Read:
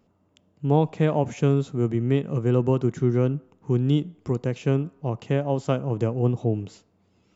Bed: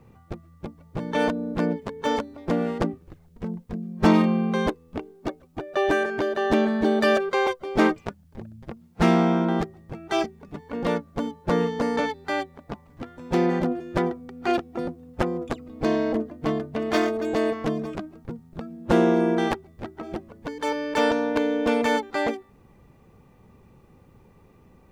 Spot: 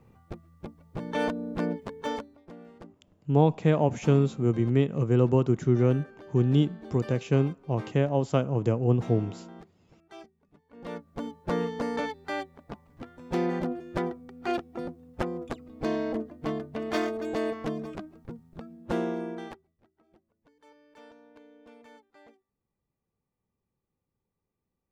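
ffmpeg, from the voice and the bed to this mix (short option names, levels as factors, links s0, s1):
-filter_complex "[0:a]adelay=2650,volume=0.891[s0];[1:a]volume=3.98,afade=t=out:st=1.93:d=0.58:silence=0.125893,afade=t=in:st=10.71:d=0.6:silence=0.141254,afade=t=out:st=18.41:d=1.39:silence=0.0562341[s1];[s0][s1]amix=inputs=2:normalize=0"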